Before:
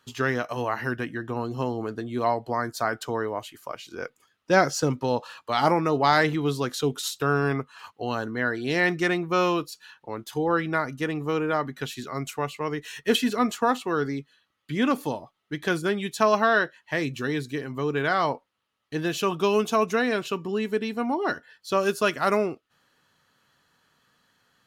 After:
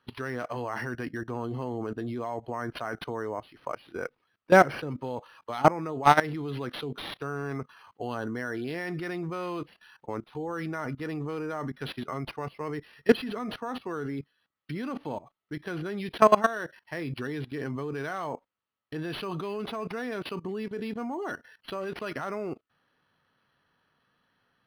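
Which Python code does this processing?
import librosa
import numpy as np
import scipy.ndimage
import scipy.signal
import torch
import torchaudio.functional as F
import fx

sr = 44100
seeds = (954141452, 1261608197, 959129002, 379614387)

y = fx.level_steps(x, sr, step_db=19)
y = scipy.signal.sosfilt(scipy.signal.butter(2, 6300.0, 'lowpass', fs=sr, output='sos'), y)
y = np.interp(np.arange(len(y)), np.arange(len(y))[::6], y[::6])
y = y * librosa.db_to_amplitude(5.0)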